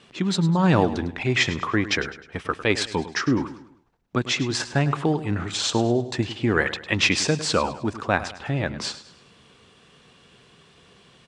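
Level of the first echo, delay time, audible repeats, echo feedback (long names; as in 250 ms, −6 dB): −14.0 dB, 103 ms, 3, 41%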